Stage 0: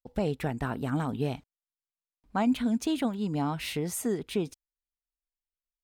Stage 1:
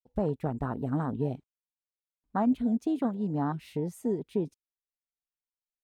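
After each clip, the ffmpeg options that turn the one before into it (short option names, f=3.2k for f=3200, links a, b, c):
-af "afwtdn=0.0224"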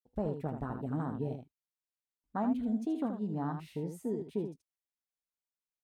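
-af "aecho=1:1:19|78:0.158|0.422,volume=-6dB"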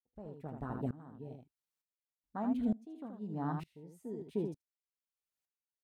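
-af "aeval=exprs='val(0)*pow(10,-24*if(lt(mod(-1.1*n/s,1),2*abs(-1.1)/1000),1-mod(-1.1*n/s,1)/(2*abs(-1.1)/1000),(mod(-1.1*n/s,1)-2*abs(-1.1)/1000)/(1-2*abs(-1.1)/1000))/20)':c=same,volume=3.5dB"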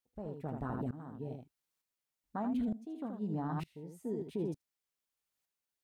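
-af "alimiter=level_in=9.5dB:limit=-24dB:level=0:latency=1:release=31,volume=-9.5dB,volume=5dB"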